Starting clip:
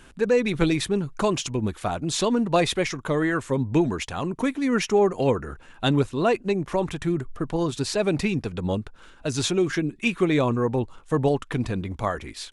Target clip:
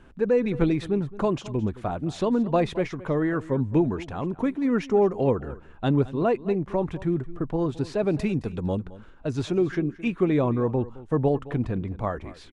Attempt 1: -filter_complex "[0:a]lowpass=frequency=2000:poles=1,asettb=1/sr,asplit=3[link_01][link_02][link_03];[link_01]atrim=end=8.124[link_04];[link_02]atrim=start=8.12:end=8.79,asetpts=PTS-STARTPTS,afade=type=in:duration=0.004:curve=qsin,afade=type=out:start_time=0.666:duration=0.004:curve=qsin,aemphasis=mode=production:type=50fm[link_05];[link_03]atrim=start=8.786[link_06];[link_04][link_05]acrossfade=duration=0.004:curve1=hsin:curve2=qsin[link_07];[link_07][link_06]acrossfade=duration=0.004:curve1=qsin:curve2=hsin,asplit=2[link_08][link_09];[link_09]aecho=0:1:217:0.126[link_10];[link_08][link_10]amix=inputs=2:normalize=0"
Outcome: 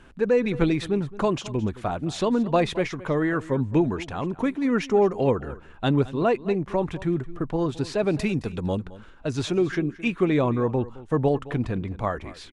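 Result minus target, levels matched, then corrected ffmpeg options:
2,000 Hz band +4.0 dB
-filter_complex "[0:a]lowpass=frequency=890:poles=1,asettb=1/sr,asplit=3[link_01][link_02][link_03];[link_01]atrim=end=8.124[link_04];[link_02]atrim=start=8.12:end=8.79,asetpts=PTS-STARTPTS,afade=type=in:duration=0.004:curve=qsin,afade=type=out:start_time=0.666:duration=0.004:curve=qsin,aemphasis=mode=production:type=50fm[link_05];[link_03]atrim=start=8.786[link_06];[link_04][link_05]acrossfade=duration=0.004:curve1=hsin:curve2=qsin[link_07];[link_07][link_06]acrossfade=duration=0.004:curve1=qsin:curve2=hsin,asplit=2[link_08][link_09];[link_09]aecho=0:1:217:0.126[link_10];[link_08][link_10]amix=inputs=2:normalize=0"

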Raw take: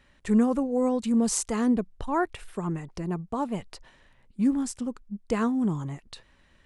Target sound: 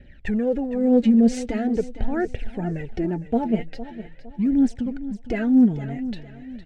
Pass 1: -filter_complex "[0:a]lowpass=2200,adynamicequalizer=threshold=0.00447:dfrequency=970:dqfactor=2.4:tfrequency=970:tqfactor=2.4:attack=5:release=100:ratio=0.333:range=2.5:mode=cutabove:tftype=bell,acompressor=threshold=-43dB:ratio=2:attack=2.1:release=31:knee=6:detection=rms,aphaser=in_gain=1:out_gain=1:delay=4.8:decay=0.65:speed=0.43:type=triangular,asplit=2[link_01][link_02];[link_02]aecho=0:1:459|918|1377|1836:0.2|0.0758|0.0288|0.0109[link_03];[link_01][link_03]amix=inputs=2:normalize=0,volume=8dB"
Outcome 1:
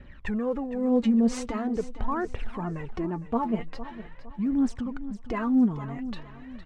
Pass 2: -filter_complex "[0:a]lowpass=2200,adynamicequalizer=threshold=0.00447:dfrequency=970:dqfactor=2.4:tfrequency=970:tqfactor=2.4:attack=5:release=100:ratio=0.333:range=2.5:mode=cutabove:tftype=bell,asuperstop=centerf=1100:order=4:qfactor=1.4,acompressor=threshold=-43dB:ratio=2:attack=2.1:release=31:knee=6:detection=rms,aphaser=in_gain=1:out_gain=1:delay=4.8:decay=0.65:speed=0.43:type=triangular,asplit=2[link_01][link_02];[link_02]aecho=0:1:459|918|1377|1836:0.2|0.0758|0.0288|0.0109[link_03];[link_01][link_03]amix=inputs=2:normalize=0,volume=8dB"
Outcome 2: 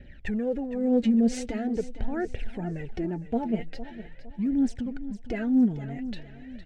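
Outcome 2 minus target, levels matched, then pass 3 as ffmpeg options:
downward compressor: peak gain reduction +6 dB
-filter_complex "[0:a]lowpass=2200,adynamicequalizer=threshold=0.00447:dfrequency=970:dqfactor=2.4:tfrequency=970:tqfactor=2.4:attack=5:release=100:ratio=0.333:range=2.5:mode=cutabove:tftype=bell,asuperstop=centerf=1100:order=4:qfactor=1.4,acompressor=threshold=-31.5dB:ratio=2:attack=2.1:release=31:knee=6:detection=rms,aphaser=in_gain=1:out_gain=1:delay=4.8:decay=0.65:speed=0.43:type=triangular,asplit=2[link_01][link_02];[link_02]aecho=0:1:459|918|1377|1836:0.2|0.0758|0.0288|0.0109[link_03];[link_01][link_03]amix=inputs=2:normalize=0,volume=8dB"

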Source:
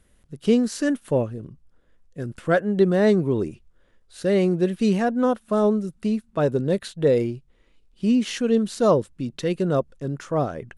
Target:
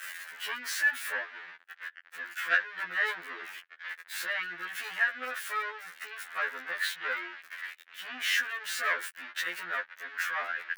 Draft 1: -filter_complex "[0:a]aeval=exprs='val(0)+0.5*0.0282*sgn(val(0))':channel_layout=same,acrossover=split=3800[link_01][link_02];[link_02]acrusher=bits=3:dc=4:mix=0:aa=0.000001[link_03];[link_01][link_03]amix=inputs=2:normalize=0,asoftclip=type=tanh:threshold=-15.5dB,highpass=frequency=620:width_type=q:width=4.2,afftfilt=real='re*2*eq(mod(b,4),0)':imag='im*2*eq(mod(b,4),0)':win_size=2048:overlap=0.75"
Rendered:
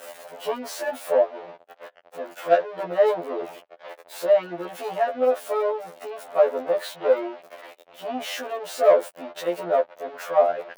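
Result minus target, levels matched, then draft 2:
500 Hz band +18.0 dB
-filter_complex "[0:a]aeval=exprs='val(0)+0.5*0.0282*sgn(val(0))':channel_layout=same,acrossover=split=3800[link_01][link_02];[link_02]acrusher=bits=3:dc=4:mix=0:aa=0.000001[link_03];[link_01][link_03]amix=inputs=2:normalize=0,asoftclip=type=tanh:threshold=-15.5dB,highpass=frequency=1700:width_type=q:width=4.2,afftfilt=real='re*2*eq(mod(b,4),0)':imag='im*2*eq(mod(b,4),0)':win_size=2048:overlap=0.75"

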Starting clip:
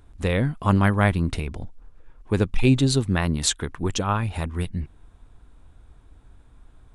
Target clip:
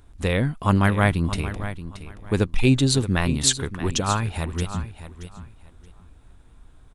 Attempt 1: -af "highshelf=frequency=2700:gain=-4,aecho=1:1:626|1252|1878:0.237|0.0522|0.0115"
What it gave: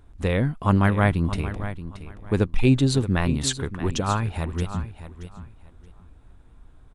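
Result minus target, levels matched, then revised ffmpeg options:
4,000 Hz band −4.5 dB
-af "highshelf=frequency=2700:gain=4,aecho=1:1:626|1252|1878:0.237|0.0522|0.0115"

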